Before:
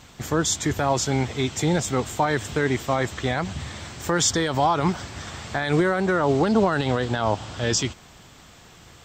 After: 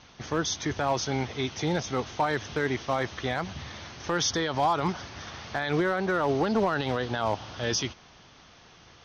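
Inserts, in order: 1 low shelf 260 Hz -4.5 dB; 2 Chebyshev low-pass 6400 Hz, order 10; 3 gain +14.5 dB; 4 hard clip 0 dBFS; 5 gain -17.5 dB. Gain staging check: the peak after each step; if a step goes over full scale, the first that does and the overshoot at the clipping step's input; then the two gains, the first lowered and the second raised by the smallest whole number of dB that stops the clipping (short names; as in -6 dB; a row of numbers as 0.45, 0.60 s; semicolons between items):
-10.5, -11.0, +3.5, 0.0, -17.5 dBFS; step 3, 3.5 dB; step 3 +10.5 dB, step 5 -13.5 dB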